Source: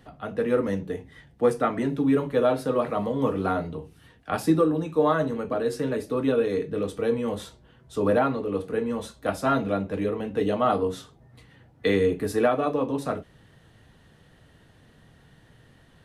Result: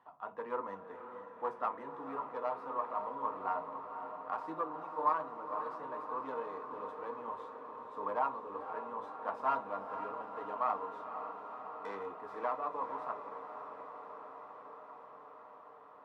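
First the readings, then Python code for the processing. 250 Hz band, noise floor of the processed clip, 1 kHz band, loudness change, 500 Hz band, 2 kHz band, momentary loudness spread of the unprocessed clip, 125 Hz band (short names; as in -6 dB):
-24.5 dB, -54 dBFS, -4.5 dB, -14.0 dB, -17.0 dB, -14.0 dB, 9 LU, -30.5 dB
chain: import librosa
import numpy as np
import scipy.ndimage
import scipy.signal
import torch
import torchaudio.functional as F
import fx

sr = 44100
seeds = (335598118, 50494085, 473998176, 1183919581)

y = fx.tracing_dist(x, sr, depth_ms=0.16)
y = fx.rider(y, sr, range_db=5, speed_s=2.0)
y = fx.bandpass_q(y, sr, hz=990.0, q=8.3)
y = fx.echo_diffused(y, sr, ms=518, feedback_pct=77, wet_db=-9)
y = F.gain(torch.from_numpy(y), 2.5).numpy()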